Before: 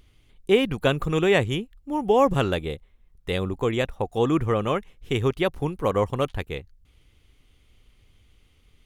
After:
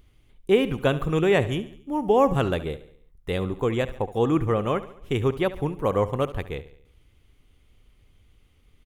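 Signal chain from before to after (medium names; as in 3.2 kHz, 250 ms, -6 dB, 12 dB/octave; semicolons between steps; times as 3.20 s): peaking EQ 4.6 kHz -5 dB 2.3 oct; on a send: feedback delay 70 ms, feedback 51%, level -15.5 dB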